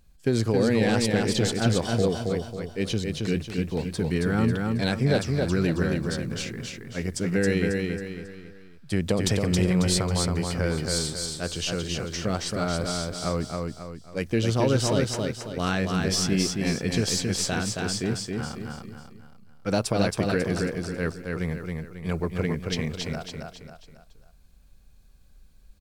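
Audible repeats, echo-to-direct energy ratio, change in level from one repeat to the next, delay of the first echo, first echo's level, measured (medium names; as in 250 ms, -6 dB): 4, -2.5 dB, -7.5 dB, 272 ms, -3.5 dB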